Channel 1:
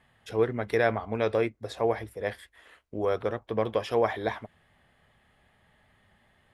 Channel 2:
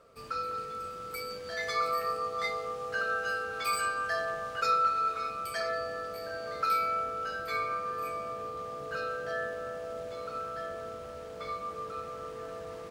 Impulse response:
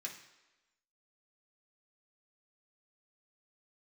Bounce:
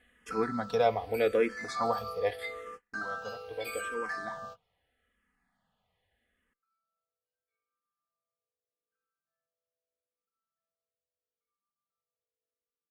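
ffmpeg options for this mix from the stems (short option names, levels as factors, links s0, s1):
-filter_complex "[0:a]aecho=1:1:4.1:0.53,volume=0.944,afade=t=out:st=2.43:d=0.43:silence=0.266073,asplit=3[s0][s1][s2];[s1]volume=0.211[s3];[1:a]volume=0.631[s4];[s2]apad=whole_len=569149[s5];[s4][s5]sidechaingate=range=0.00251:threshold=0.00112:ratio=16:detection=peak[s6];[2:a]atrim=start_sample=2205[s7];[s3][s7]afir=irnorm=-1:irlink=0[s8];[s0][s6][s8]amix=inputs=3:normalize=0,asplit=2[s9][s10];[s10]afreqshift=-0.8[s11];[s9][s11]amix=inputs=2:normalize=1"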